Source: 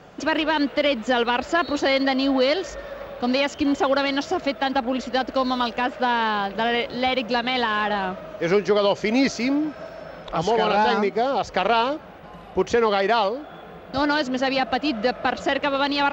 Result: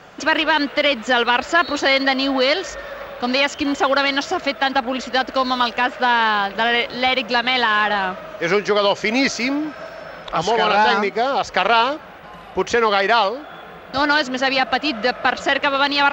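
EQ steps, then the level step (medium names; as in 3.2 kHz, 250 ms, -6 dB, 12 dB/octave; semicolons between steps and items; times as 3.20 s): peaking EQ 1.5 kHz +7 dB 2.2 oct; treble shelf 3 kHz +7.5 dB; -1.0 dB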